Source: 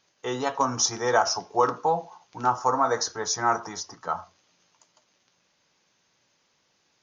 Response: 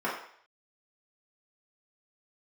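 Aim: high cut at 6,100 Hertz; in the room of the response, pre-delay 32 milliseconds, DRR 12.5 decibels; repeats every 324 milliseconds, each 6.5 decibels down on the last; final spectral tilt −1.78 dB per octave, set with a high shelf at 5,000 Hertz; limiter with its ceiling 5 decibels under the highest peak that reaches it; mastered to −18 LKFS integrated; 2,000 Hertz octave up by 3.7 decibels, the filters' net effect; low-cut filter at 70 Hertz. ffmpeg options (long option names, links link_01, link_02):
-filter_complex "[0:a]highpass=70,lowpass=6100,equalizer=frequency=2000:width_type=o:gain=4,highshelf=frequency=5000:gain=8,alimiter=limit=-12dB:level=0:latency=1,aecho=1:1:324|648|972|1296|1620|1944:0.473|0.222|0.105|0.0491|0.0231|0.0109,asplit=2[link_01][link_02];[1:a]atrim=start_sample=2205,adelay=32[link_03];[link_02][link_03]afir=irnorm=-1:irlink=0,volume=-23dB[link_04];[link_01][link_04]amix=inputs=2:normalize=0,volume=7dB"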